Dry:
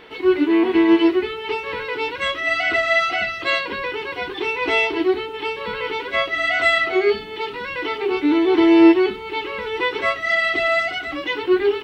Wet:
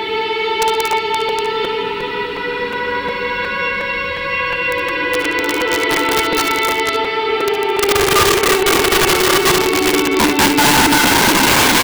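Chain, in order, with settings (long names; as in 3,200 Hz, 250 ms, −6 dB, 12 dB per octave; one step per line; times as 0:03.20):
extreme stretch with random phases 12×, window 0.25 s, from 0:07.36
wrap-around overflow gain 16 dB
ambience of single reflections 60 ms −12.5 dB, 71 ms −11 dB
regular buffer underruns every 0.36 s, samples 256, repeat, from 0:00.92
level +8.5 dB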